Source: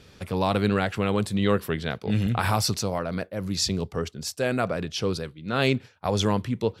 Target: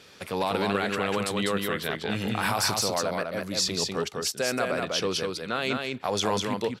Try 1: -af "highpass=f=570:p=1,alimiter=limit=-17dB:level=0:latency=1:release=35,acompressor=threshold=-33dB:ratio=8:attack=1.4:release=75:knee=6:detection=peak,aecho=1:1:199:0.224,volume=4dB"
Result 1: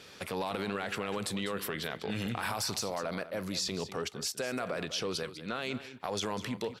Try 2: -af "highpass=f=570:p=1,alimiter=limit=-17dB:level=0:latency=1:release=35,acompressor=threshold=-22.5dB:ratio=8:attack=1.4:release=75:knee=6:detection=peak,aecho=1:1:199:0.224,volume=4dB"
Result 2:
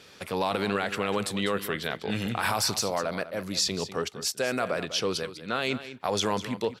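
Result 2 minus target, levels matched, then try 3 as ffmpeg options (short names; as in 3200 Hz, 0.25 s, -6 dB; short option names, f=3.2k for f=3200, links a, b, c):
echo-to-direct -9.5 dB
-af "highpass=f=570:p=1,alimiter=limit=-17dB:level=0:latency=1:release=35,acompressor=threshold=-22.5dB:ratio=8:attack=1.4:release=75:knee=6:detection=peak,aecho=1:1:199:0.668,volume=4dB"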